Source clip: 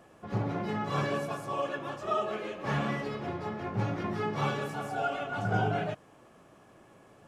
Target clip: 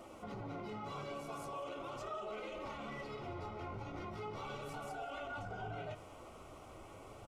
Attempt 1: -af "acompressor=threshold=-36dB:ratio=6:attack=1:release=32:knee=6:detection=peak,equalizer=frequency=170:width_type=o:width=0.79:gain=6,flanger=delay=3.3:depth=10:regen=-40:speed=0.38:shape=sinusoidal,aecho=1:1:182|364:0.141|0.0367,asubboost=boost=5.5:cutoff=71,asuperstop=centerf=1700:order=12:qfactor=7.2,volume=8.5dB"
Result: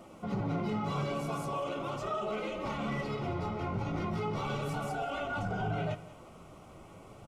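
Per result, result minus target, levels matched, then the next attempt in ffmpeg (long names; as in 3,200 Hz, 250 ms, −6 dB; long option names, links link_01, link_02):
downward compressor: peak gain reduction −8.5 dB; 125 Hz band +3.0 dB
-af "acompressor=threshold=-46dB:ratio=6:attack=1:release=32:knee=6:detection=peak,equalizer=frequency=170:width_type=o:width=0.79:gain=6,flanger=delay=3.3:depth=10:regen=-40:speed=0.38:shape=sinusoidal,aecho=1:1:182|364:0.141|0.0367,asubboost=boost=5.5:cutoff=71,asuperstop=centerf=1700:order=12:qfactor=7.2,volume=8.5dB"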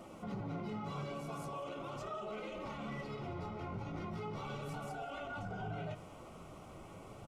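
125 Hz band +3.5 dB
-af "acompressor=threshold=-46dB:ratio=6:attack=1:release=32:knee=6:detection=peak,equalizer=frequency=170:width_type=o:width=0.79:gain=-4.5,flanger=delay=3.3:depth=10:regen=-40:speed=0.38:shape=sinusoidal,aecho=1:1:182|364:0.141|0.0367,asubboost=boost=5.5:cutoff=71,asuperstop=centerf=1700:order=12:qfactor=7.2,volume=8.5dB"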